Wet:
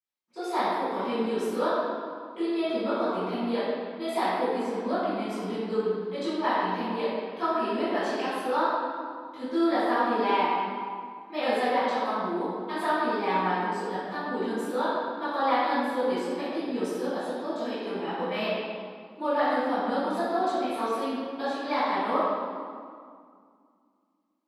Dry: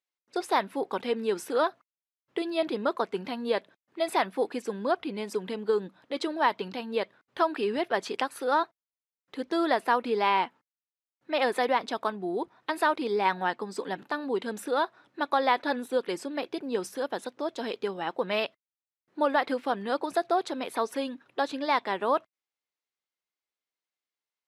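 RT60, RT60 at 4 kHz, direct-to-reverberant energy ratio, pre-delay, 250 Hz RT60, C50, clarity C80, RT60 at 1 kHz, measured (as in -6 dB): 2.1 s, 1.4 s, -16.0 dB, 3 ms, 2.7 s, -4.5 dB, -1.5 dB, 2.2 s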